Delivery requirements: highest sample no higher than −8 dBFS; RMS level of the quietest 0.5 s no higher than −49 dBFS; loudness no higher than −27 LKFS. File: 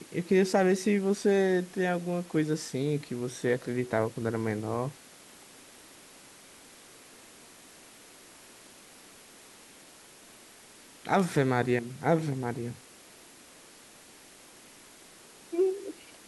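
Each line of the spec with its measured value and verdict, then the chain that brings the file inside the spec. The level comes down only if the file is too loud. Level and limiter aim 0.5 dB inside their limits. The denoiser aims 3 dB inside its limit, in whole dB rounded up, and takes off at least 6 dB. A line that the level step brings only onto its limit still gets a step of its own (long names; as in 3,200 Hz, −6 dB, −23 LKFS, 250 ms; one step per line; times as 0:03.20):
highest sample −11.5 dBFS: in spec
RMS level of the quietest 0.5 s −53 dBFS: in spec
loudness −29.0 LKFS: in spec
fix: no processing needed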